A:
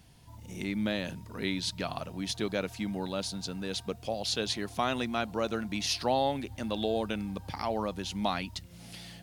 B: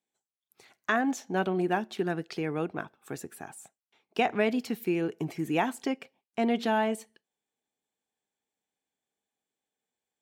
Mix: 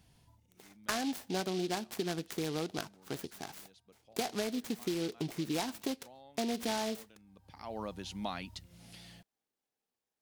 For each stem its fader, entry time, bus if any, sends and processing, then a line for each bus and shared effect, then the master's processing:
-7.0 dB, 0.00 s, no send, auto duck -21 dB, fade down 0.30 s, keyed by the second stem
-1.5 dB, 0.00 s, no send, delay time shaken by noise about 3.6 kHz, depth 0.1 ms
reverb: none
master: compression 6:1, threshold -31 dBFS, peak gain reduction 9 dB

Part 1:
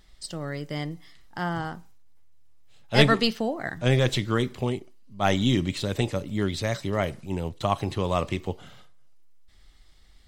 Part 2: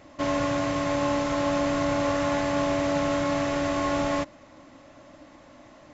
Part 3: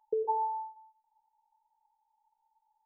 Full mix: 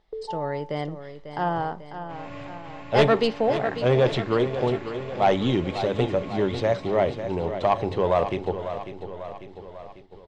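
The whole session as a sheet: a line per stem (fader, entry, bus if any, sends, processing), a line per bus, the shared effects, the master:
-1.0 dB, 0.00 s, no send, echo send -10.5 dB, low-pass 3.9 kHz 12 dB/octave; high-order bell 620 Hz +8.5 dB; saturation -9.5 dBFS, distortion -14 dB
-10.0 dB, 1.90 s, no send, echo send -7 dB, fifteen-band graphic EQ 100 Hz +9 dB, 2.5 kHz +7 dB, 6.3 kHz -10 dB; auto duck -15 dB, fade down 0.50 s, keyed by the first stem
-3.5 dB, 0.00 s, no send, no echo send, none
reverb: none
echo: feedback delay 546 ms, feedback 56%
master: hum notches 50/100 Hz; gate -45 dBFS, range -9 dB

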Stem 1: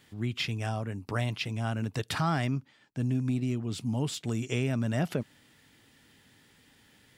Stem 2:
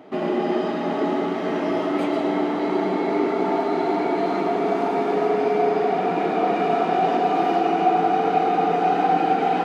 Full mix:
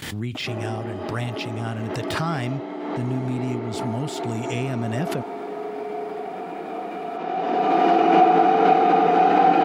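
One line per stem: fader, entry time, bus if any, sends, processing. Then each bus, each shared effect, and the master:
+2.0 dB, 0.00 s, no send, de-esser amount 80%; gate with hold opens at -52 dBFS
+2.5 dB, 0.35 s, no send, high-pass 160 Hz; treble shelf 7.9 kHz -8.5 dB; auto duck -13 dB, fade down 0.75 s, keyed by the first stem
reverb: none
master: swell ahead of each attack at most 34 dB/s

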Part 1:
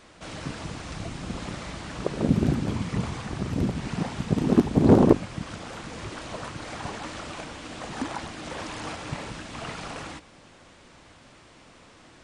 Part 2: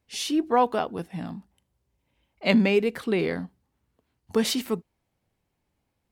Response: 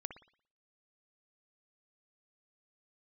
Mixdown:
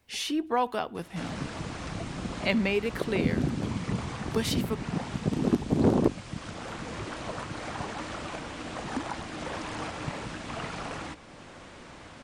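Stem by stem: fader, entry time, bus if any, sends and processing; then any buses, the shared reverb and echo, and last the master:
-3.5 dB, 0.95 s, no send, none
-4.0 dB, 0.00 s, send -14 dB, tilt shelf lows -3.5 dB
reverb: on, pre-delay 57 ms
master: three bands compressed up and down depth 40%

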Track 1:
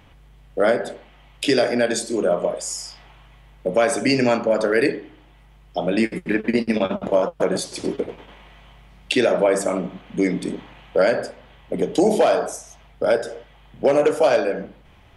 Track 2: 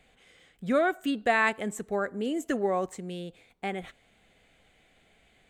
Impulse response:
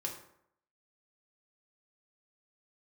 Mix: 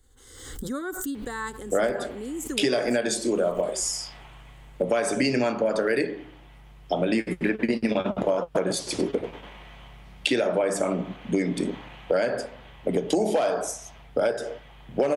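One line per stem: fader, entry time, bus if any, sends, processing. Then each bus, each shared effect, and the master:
+1.5 dB, 1.15 s, no send, none
-5.5 dB, 0.00 s, no send, tone controls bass +13 dB, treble +12 dB; static phaser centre 660 Hz, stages 6; swell ahead of each attack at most 49 dB/s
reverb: none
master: compression 4:1, threshold -21 dBFS, peak gain reduction 9 dB

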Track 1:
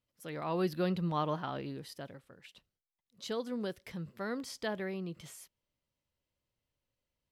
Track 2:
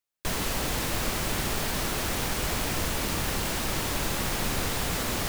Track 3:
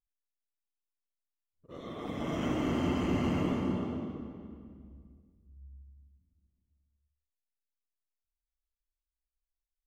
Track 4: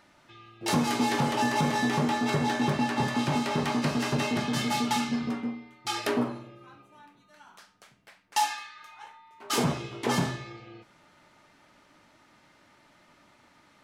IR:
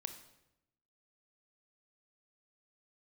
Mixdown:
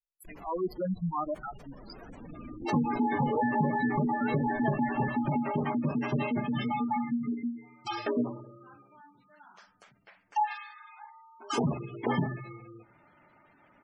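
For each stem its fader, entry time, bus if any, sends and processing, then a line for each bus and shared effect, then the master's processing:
0.0 dB, 0.00 s, send -14.5 dB, no echo send, expander on every frequency bin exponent 3; reverb removal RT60 1.5 s; waveshaping leveller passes 2
-17.5 dB, 0.00 s, send -15 dB, no echo send, peaking EQ 87 Hz -7.5 dB 0.69 oct
-12.5 dB, 0.00 s, no send, no echo send, spectral contrast enhancement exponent 2.5
-1.5 dB, 2.00 s, send -22 dB, echo send -23.5 dB, none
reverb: on, RT60 0.90 s, pre-delay 23 ms
echo: feedback delay 141 ms, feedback 41%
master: peaking EQ 4 kHz -3 dB 0.87 oct; spectral gate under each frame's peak -15 dB strong

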